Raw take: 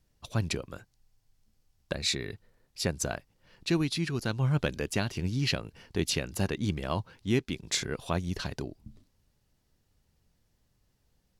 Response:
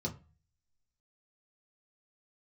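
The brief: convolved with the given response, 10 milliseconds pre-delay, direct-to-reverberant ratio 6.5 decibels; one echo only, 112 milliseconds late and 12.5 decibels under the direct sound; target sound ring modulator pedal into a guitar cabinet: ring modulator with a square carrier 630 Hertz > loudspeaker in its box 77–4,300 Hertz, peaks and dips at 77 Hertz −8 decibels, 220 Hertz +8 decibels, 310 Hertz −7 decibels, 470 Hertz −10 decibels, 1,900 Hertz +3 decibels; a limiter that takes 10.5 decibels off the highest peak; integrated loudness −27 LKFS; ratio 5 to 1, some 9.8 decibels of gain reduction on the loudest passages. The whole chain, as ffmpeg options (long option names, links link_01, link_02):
-filter_complex "[0:a]acompressor=threshold=-34dB:ratio=5,alimiter=level_in=8dB:limit=-24dB:level=0:latency=1,volume=-8dB,aecho=1:1:112:0.237,asplit=2[link_01][link_02];[1:a]atrim=start_sample=2205,adelay=10[link_03];[link_02][link_03]afir=irnorm=-1:irlink=0,volume=-8dB[link_04];[link_01][link_04]amix=inputs=2:normalize=0,aeval=exprs='val(0)*sgn(sin(2*PI*630*n/s))':channel_layout=same,highpass=77,equalizer=frequency=77:width_type=q:width=4:gain=-8,equalizer=frequency=220:width_type=q:width=4:gain=8,equalizer=frequency=310:width_type=q:width=4:gain=-7,equalizer=frequency=470:width_type=q:width=4:gain=-10,equalizer=frequency=1900:width_type=q:width=4:gain=3,lowpass=frequency=4300:width=0.5412,lowpass=frequency=4300:width=1.3066,volume=12.5dB"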